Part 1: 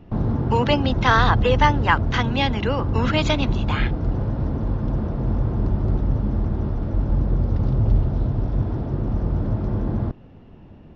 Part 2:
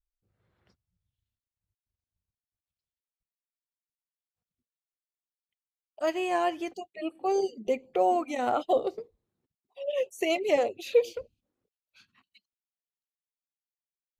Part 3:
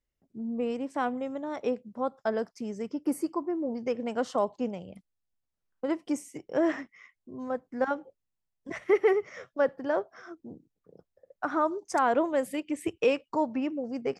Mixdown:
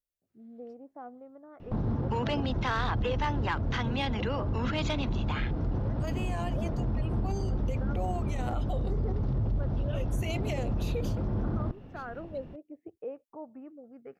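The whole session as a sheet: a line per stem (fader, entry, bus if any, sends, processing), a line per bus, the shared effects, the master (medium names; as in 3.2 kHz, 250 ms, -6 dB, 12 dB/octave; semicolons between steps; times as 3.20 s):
-1.5 dB, 1.60 s, no send, saturation -10 dBFS, distortion -20 dB; compression 1.5:1, threshold -29 dBFS, peak gain reduction 5.5 dB
-7.0 dB, 0.00 s, no send, tilt EQ +2 dB/octave
-16.5 dB, 0.00 s, no send, LFO low-pass saw up 0.49 Hz 550–1600 Hz; peaking EQ 980 Hz -13 dB 0.35 oct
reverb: none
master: peak limiter -22.5 dBFS, peak gain reduction 8 dB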